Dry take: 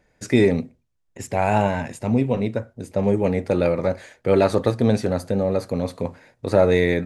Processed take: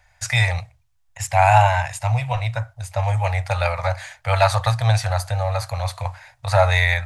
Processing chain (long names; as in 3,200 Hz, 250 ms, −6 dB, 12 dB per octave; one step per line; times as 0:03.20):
elliptic band-stop filter 110–730 Hz, stop band 50 dB
level +8.5 dB